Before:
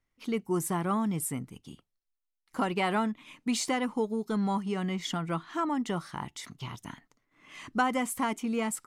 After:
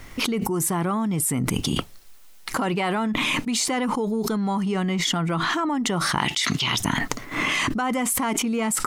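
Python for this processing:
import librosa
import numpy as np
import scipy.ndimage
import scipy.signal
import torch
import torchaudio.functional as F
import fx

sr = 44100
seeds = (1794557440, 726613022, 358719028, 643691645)

y = fx.weighting(x, sr, curve='D', at=(6.18, 6.78))
y = fx.env_flatten(y, sr, amount_pct=100)
y = y * librosa.db_to_amplitude(-1.0)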